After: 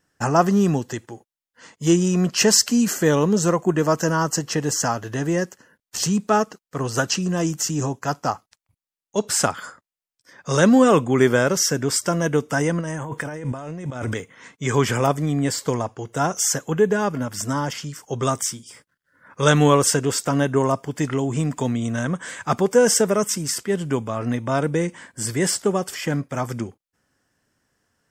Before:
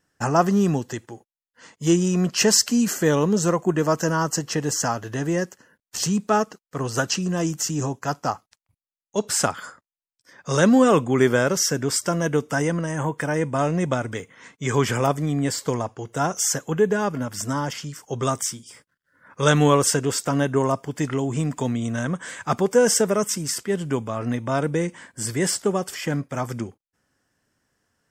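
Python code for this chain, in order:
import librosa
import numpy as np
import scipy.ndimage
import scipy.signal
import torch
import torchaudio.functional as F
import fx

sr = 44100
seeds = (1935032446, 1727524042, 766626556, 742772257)

y = fx.over_compress(x, sr, threshold_db=-32.0, ratio=-1.0, at=(12.8, 14.13), fade=0.02)
y = F.gain(torch.from_numpy(y), 1.5).numpy()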